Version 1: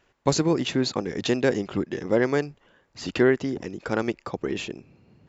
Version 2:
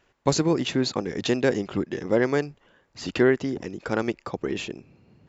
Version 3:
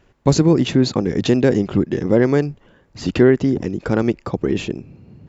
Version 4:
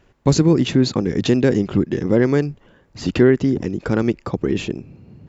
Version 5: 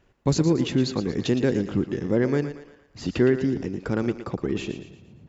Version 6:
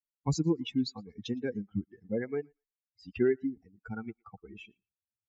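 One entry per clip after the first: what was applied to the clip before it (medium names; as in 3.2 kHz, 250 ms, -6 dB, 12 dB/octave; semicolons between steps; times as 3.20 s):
no audible change
bass shelf 400 Hz +12 dB; in parallel at -3 dB: peak limiter -13.5 dBFS, peak gain reduction 12 dB; on the sum: trim -1.5 dB
dynamic bell 700 Hz, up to -4 dB, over -29 dBFS, Q 1.4
thinning echo 115 ms, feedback 46%, high-pass 290 Hz, level -10 dB; trim -6.5 dB
expander on every frequency bin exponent 3; resampled via 16 kHz; comb of notches 610 Hz; trim -2.5 dB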